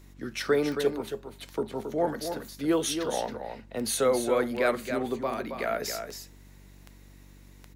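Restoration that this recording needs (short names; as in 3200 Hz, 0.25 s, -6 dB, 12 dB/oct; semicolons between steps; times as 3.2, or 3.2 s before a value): de-click; de-hum 47.9 Hz, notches 7; inverse comb 0.273 s -7.5 dB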